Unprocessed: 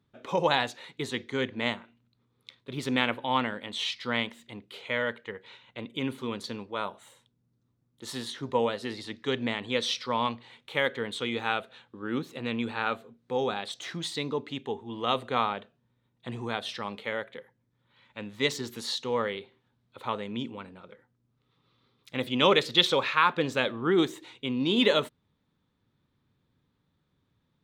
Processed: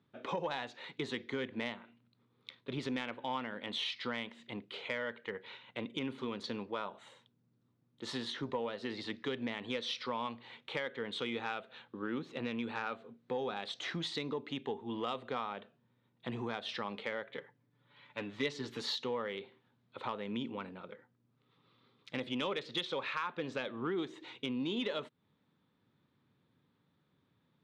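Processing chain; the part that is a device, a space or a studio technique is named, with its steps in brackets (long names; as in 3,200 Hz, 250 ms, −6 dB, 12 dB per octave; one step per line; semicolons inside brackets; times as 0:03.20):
AM radio (band-pass filter 130–4,200 Hz; downward compressor 5 to 1, threshold −35 dBFS, peak gain reduction 16.5 dB; soft clipping −24 dBFS, distortion −23 dB)
0:17.29–0:18.96: comb filter 6.9 ms, depth 53%
level +1 dB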